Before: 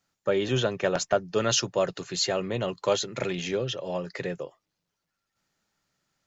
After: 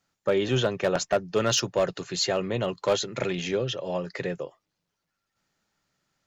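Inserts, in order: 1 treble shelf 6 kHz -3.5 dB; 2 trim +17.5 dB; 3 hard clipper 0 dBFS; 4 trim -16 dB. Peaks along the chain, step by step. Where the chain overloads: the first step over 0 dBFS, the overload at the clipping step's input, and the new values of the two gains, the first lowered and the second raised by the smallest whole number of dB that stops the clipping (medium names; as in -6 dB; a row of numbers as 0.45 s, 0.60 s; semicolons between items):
-11.5 dBFS, +6.0 dBFS, 0.0 dBFS, -16.0 dBFS; step 2, 6.0 dB; step 2 +11.5 dB, step 4 -10 dB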